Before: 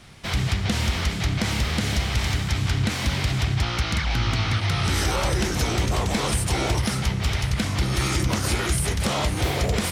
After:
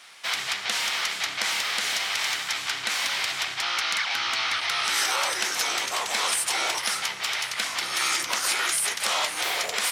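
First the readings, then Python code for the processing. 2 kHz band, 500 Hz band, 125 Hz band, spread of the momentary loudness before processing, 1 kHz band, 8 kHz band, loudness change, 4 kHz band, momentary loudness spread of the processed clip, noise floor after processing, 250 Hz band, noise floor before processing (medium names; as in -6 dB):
+3.0 dB, -8.0 dB, -34.0 dB, 2 LU, +0.5 dB, +3.5 dB, -1.0 dB, +3.5 dB, 4 LU, -35 dBFS, -20.5 dB, -28 dBFS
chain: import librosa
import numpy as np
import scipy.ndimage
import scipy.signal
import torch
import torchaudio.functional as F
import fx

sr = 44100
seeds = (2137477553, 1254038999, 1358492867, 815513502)

y = scipy.signal.sosfilt(scipy.signal.butter(2, 1000.0, 'highpass', fs=sr, output='sos'), x)
y = F.gain(torch.from_numpy(y), 3.5).numpy()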